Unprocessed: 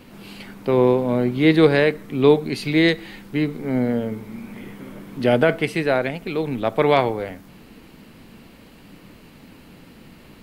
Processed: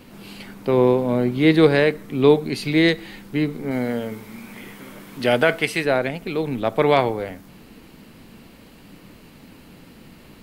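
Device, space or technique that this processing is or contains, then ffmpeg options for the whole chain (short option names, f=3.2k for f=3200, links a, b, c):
exciter from parts: -filter_complex "[0:a]asplit=2[a][b];[b]highpass=3.3k,asoftclip=type=tanh:threshold=-27.5dB,volume=-11.5dB[c];[a][c]amix=inputs=2:normalize=0,asettb=1/sr,asplit=3[d][e][f];[d]atrim=end=3.714[g];[e]atrim=start=3.71:end=5.85,asetpts=PTS-STARTPTS,afade=t=in:d=0.004:c=qsin,afade=t=out:st=2.136:d=0.004:c=qsin,tiltshelf=f=700:g=-5[h];[f]atrim=start=5.846[i];[g][h]acrossfade=d=0.004:c1=hsin:c2=qsin[j];[j][i]acrossfade=d=0.004:c1=qsin:c2=hsin"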